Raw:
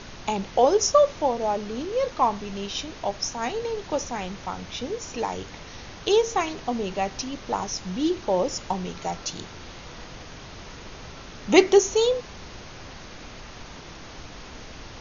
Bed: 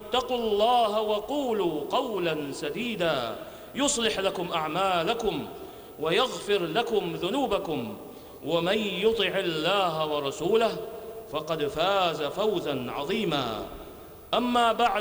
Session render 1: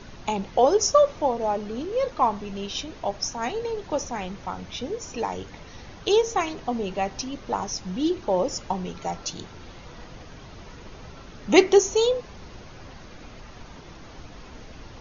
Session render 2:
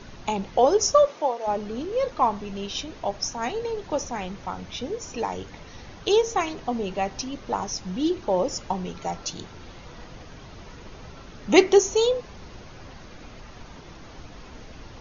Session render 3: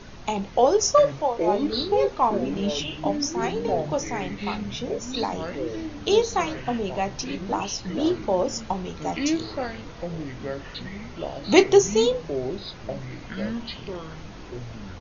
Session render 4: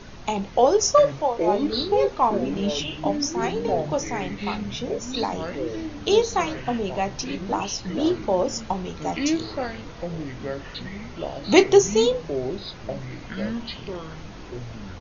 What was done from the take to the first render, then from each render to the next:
denoiser 7 dB, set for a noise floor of -42 dBFS
1.05–1.46 HPF 230 Hz -> 690 Hz
echoes that change speed 0.58 s, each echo -6 st, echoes 3, each echo -6 dB; doubler 25 ms -12 dB
gain +1 dB; limiter -2 dBFS, peak gain reduction 1 dB

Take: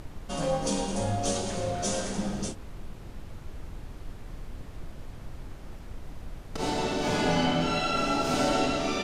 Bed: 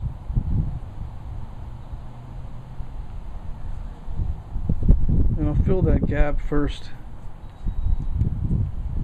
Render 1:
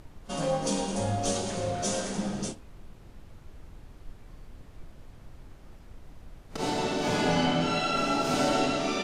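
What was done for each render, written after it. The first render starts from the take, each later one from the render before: noise print and reduce 7 dB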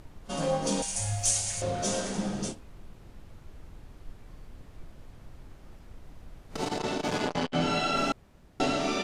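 0.82–1.62 EQ curve 110 Hz 0 dB, 210 Hz -19 dB, 370 Hz -24 dB, 720 Hz -8 dB, 1200 Hz -10 dB, 2200 Hz +3 dB, 3400 Hz -3 dB, 7600 Hz +11 dB; 6.64–7.55 core saturation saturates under 620 Hz; 8.12–8.6 room tone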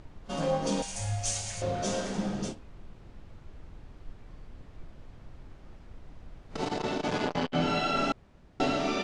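air absorption 74 m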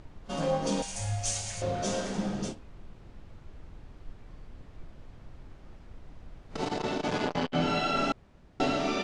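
nothing audible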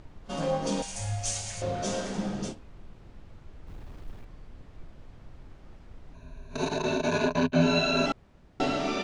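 3.67–4.25 G.711 law mismatch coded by mu; 6.14–8.06 ripple EQ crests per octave 1.5, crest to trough 17 dB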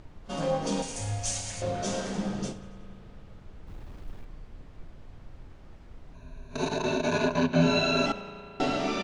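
frequency-shifting echo 92 ms, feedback 57%, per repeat -30 Hz, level -19 dB; spring tank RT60 3.8 s, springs 36 ms, chirp 60 ms, DRR 14 dB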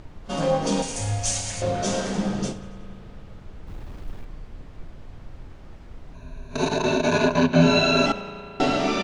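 gain +6 dB

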